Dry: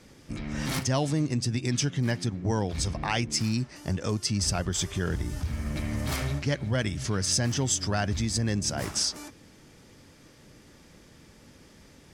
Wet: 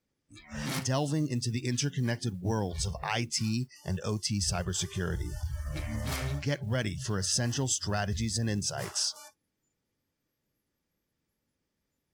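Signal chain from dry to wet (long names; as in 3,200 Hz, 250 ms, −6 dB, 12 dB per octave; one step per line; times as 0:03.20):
noise reduction from a noise print of the clip's start 26 dB
noise that follows the level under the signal 34 dB
level −3 dB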